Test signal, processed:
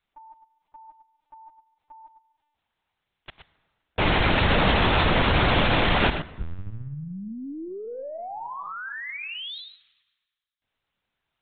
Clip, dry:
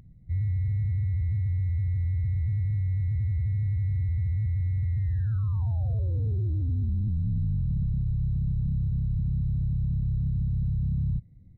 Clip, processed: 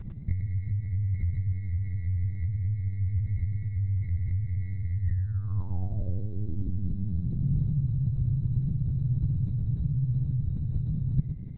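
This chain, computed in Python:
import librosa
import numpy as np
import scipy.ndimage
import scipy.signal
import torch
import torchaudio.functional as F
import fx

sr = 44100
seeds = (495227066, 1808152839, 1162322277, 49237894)

p1 = scipy.signal.sosfilt(scipy.signal.butter(2, 77.0, 'highpass', fs=sr, output='sos'), x)
p2 = fx.over_compress(p1, sr, threshold_db=-33.0, ratio=-0.5)
p3 = p2 + fx.echo_single(p2, sr, ms=114, db=-8.0, dry=0)
p4 = fx.rev_plate(p3, sr, seeds[0], rt60_s=1.8, hf_ratio=0.7, predelay_ms=0, drr_db=16.5)
p5 = fx.lpc_vocoder(p4, sr, seeds[1], excitation='pitch_kept', order=10)
y = p5 * librosa.db_to_amplitude(7.5)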